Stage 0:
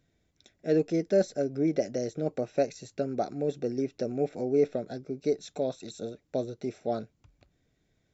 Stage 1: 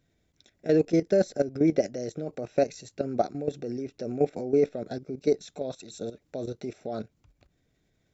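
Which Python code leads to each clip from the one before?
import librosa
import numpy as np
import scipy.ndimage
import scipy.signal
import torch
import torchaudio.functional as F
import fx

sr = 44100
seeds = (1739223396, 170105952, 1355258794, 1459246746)

y = fx.level_steps(x, sr, step_db=13)
y = y * 10.0 ** (6.5 / 20.0)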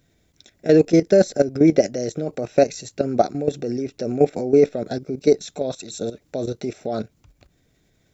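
y = fx.high_shelf(x, sr, hz=5900.0, db=5.5)
y = y * 10.0 ** (8.0 / 20.0)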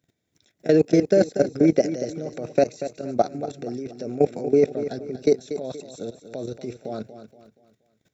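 y = scipy.signal.sosfilt(scipy.signal.butter(4, 97.0, 'highpass', fs=sr, output='sos'), x)
y = fx.level_steps(y, sr, step_db=16)
y = fx.echo_feedback(y, sr, ms=237, feedback_pct=38, wet_db=-11.5)
y = y * 10.0 ** (1.0 / 20.0)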